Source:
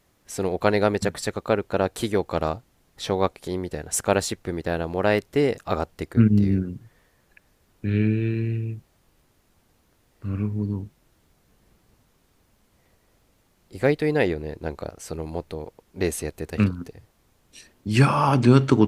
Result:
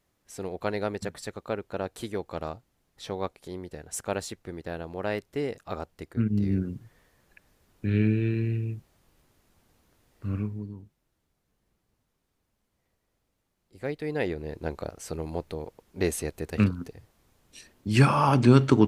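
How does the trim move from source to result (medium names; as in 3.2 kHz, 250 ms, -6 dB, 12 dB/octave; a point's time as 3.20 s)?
6.26 s -9.5 dB
6.66 s -2 dB
10.34 s -2 dB
10.75 s -14 dB
13.76 s -14 dB
14.58 s -2 dB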